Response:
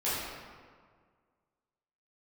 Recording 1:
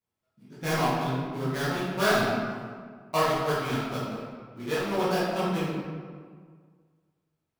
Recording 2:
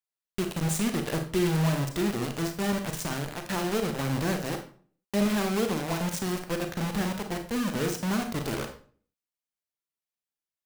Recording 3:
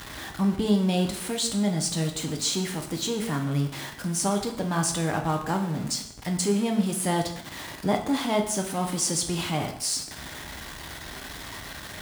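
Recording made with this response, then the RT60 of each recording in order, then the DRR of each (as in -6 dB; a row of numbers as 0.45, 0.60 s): 1; 1.8, 0.45, 0.70 s; -11.5, 5.0, 3.5 dB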